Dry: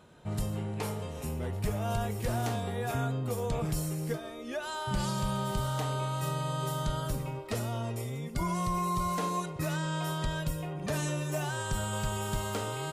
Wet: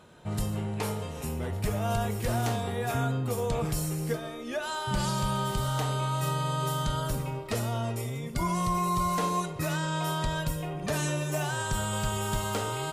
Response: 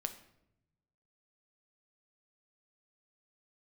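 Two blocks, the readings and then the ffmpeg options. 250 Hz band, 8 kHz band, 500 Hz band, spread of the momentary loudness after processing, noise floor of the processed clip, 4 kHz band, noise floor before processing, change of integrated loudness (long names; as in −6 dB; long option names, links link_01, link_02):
+2.5 dB, +4.0 dB, +3.0 dB, 5 LU, −38 dBFS, +4.0 dB, −41 dBFS, +3.0 dB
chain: -filter_complex "[0:a]asplit=2[link_01][link_02];[link_02]lowshelf=frequency=360:gain=-5.5[link_03];[1:a]atrim=start_sample=2205,asetrate=33957,aresample=44100[link_04];[link_03][link_04]afir=irnorm=-1:irlink=0,volume=0.5dB[link_05];[link_01][link_05]amix=inputs=2:normalize=0,volume=-2.5dB"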